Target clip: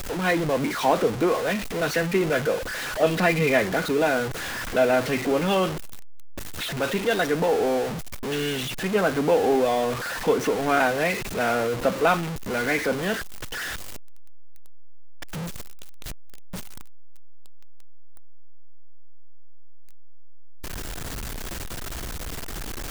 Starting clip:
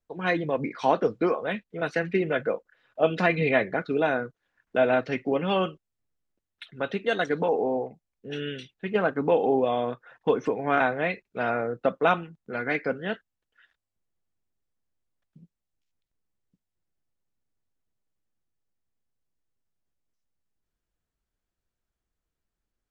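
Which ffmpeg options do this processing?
ffmpeg -i in.wav -af "aeval=exprs='val(0)+0.5*0.0562*sgn(val(0))':channel_layout=same" out.wav

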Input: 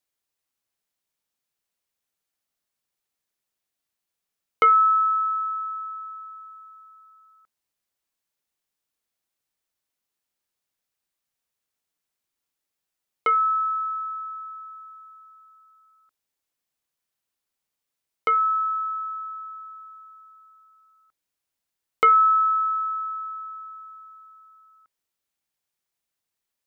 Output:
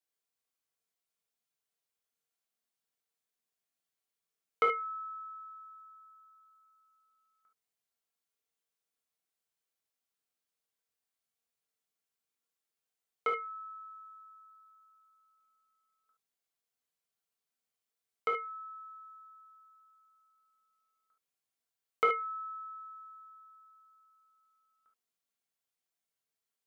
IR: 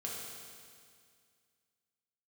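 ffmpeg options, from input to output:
-filter_complex "[0:a]lowshelf=frequency=180:gain=-5.5[link_01];[1:a]atrim=start_sample=2205,atrim=end_sample=3528[link_02];[link_01][link_02]afir=irnorm=-1:irlink=0,volume=-4.5dB"

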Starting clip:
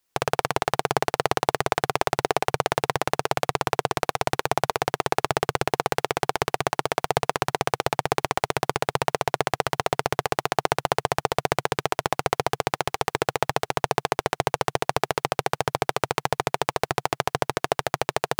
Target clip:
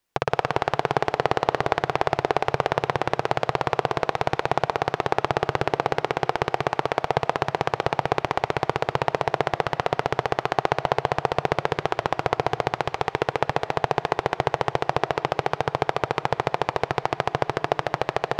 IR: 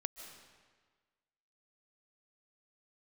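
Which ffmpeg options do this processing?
-filter_complex "[0:a]acrossover=split=6100[link_01][link_02];[link_02]acompressor=threshold=-46dB:ratio=4:attack=1:release=60[link_03];[link_01][link_03]amix=inputs=2:normalize=0,highshelf=frequency=4200:gain=-8.5,bandreject=frequency=1300:width=22,asplit=2[link_04][link_05];[1:a]atrim=start_sample=2205[link_06];[link_05][link_06]afir=irnorm=-1:irlink=0,volume=-2.5dB[link_07];[link_04][link_07]amix=inputs=2:normalize=0,volume=-2.5dB"

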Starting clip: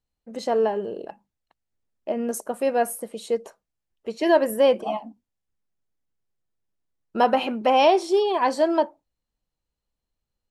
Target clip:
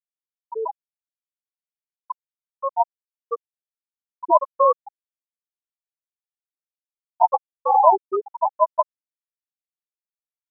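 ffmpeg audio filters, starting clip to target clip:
ffmpeg -i in.wav -af "acrusher=samples=27:mix=1:aa=0.000001,equalizer=frequency=125:width_type=o:width=1:gain=-9,equalizer=frequency=250:width_type=o:width=1:gain=-3,equalizer=frequency=1000:width_type=o:width=1:gain=9,afftfilt=real='re*gte(hypot(re,im),1.12)':imag='im*gte(hypot(re,im),1.12)':win_size=1024:overlap=0.75,volume=-1dB" out.wav

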